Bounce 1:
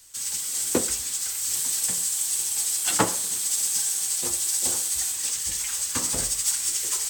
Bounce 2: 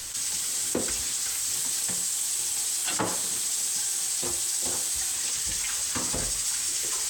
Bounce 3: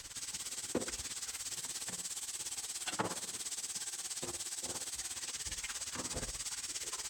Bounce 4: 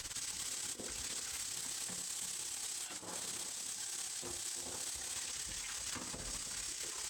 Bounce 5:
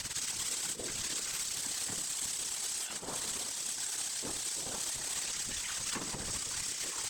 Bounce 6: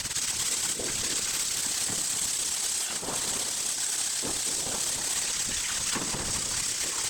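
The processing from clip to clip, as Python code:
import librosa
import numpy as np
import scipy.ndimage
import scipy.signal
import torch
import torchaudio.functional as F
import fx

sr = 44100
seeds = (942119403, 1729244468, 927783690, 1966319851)

y1 = fx.high_shelf(x, sr, hz=9100.0, db=-9.0)
y1 = fx.env_flatten(y1, sr, amount_pct=70)
y1 = F.gain(torch.from_numpy(y1), -7.5).numpy()
y2 = fx.high_shelf(y1, sr, hz=7500.0, db=-11.0)
y2 = y2 * (1.0 - 0.77 / 2.0 + 0.77 / 2.0 * np.cos(2.0 * np.pi * 17.0 * (np.arange(len(y2)) / sr)))
y2 = F.gain(torch.from_numpy(y2), -5.0).numpy()
y3 = fx.over_compress(y2, sr, threshold_db=-43.0, ratio=-0.5)
y3 = y3 + 10.0 ** (-9.5 / 20.0) * np.pad(y3, (int(328 * sr / 1000.0), 0))[:len(y3)]
y3 = F.gain(torch.from_numpy(y3), 1.0).numpy()
y4 = fx.whisperise(y3, sr, seeds[0])
y4 = F.gain(torch.from_numpy(y4), 5.5).numpy()
y5 = y4 + 10.0 ** (-8.5 / 20.0) * np.pad(y4, (int(238 * sr / 1000.0), 0))[:len(y4)]
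y5 = F.gain(torch.from_numpy(y5), 7.0).numpy()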